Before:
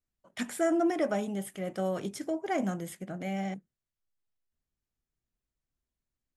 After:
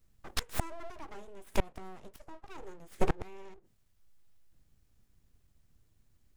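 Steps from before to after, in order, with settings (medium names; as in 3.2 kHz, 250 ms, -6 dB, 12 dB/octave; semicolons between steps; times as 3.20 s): inverted gate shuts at -29 dBFS, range -29 dB; bass shelf 160 Hz +11.5 dB; full-wave rectifier; trim +13.5 dB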